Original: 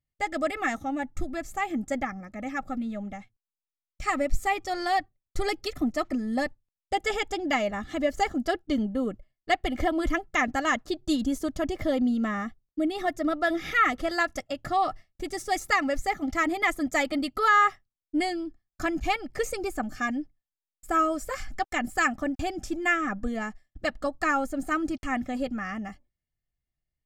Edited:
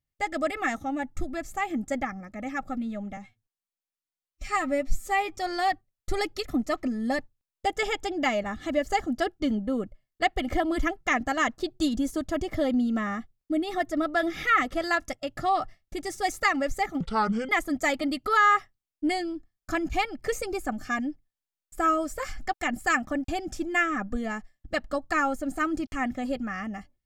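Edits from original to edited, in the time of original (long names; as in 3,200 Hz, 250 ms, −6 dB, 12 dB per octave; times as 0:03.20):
0:03.17–0:04.62: time-stretch 1.5×
0:16.28–0:16.60: play speed 66%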